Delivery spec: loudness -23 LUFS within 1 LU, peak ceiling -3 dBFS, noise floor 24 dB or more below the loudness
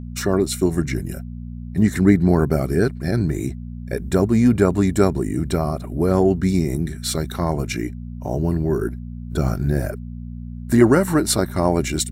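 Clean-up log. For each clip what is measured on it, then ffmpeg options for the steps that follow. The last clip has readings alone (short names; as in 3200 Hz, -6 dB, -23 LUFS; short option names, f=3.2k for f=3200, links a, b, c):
hum 60 Hz; harmonics up to 240 Hz; hum level -29 dBFS; loudness -20.0 LUFS; peak -1.0 dBFS; loudness target -23.0 LUFS
-> -af "bandreject=f=60:t=h:w=4,bandreject=f=120:t=h:w=4,bandreject=f=180:t=h:w=4,bandreject=f=240:t=h:w=4"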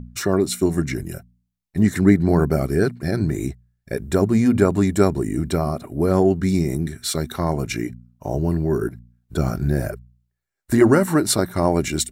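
hum none; loudness -20.5 LUFS; peak -2.0 dBFS; loudness target -23.0 LUFS
-> -af "volume=-2.5dB"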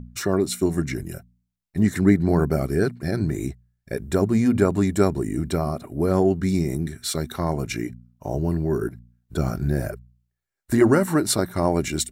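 loudness -23.0 LUFS; peak -4.5 dBFS; noise floor -80 dBFS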